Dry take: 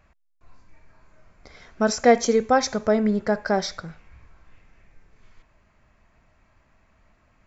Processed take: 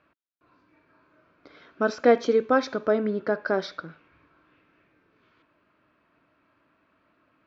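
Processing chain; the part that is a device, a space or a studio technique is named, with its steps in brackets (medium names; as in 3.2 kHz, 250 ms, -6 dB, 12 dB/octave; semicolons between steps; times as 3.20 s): kitchen radio (cabinet simulation 200–3900 Hz, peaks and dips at 210 Hz -5 dB, 300 Hz +9 dB, 780 Hz -8 dB, 1.4 kHz +4 dB, 2 kHz -7 dB); trim -1 dB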